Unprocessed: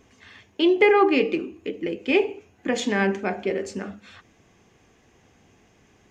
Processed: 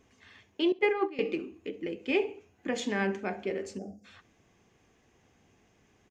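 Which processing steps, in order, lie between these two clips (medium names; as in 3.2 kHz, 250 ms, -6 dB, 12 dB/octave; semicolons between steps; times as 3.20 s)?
0.72–1.19 s: gate -15 dBFS, range -17 dB; feedback delay 67 ms, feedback 25%, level -23 dB; 3.78–4.05 s: time-frequency box 800–4600 Hz -29 dB; trim -7.5 dB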